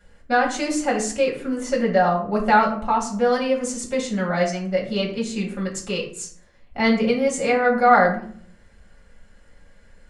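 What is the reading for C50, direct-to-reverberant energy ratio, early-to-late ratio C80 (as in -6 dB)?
8.0 dB, -3.0 dB, 12.0 dB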